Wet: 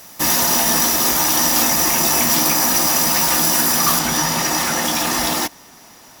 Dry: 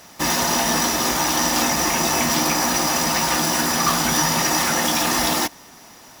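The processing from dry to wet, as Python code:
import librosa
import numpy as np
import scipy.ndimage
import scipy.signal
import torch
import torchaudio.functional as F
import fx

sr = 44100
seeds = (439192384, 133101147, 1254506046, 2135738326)

y = fx.peak_eq(x, sr, hz=16000.0, db=fx.steps((0.0, 13.0), (3.99, 3.0)), octaves=1.1)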